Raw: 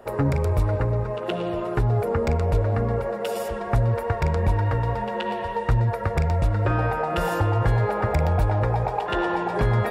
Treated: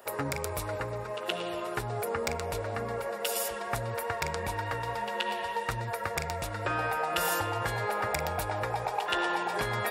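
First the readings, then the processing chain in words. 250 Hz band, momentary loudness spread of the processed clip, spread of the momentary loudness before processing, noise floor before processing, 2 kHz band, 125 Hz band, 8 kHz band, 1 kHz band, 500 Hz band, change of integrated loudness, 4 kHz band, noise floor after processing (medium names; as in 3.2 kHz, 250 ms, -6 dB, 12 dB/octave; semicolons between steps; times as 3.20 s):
-12.0 dB, 5 LU, 5 LU, -30 dBFS, -0.5 dB, -17.0 dB, no reading, -4.5 dB, -8.0 dB, -8.0 dB, +3.0 dB, -37 dBFS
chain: tilt EQ +4 dB/octave; trim -4 dB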